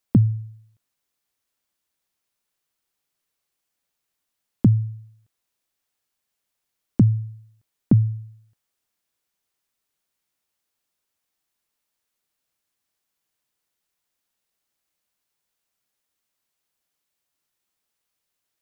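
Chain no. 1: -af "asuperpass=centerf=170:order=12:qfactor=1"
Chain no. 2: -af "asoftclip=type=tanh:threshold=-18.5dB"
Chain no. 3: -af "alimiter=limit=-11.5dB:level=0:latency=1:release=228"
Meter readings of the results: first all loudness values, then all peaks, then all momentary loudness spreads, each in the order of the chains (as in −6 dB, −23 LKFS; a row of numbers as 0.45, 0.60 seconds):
−22.5, −28.0, −25.5 LKFS; −7.0, −18.5, −11.5 dBFS; 16, 17, 14 LU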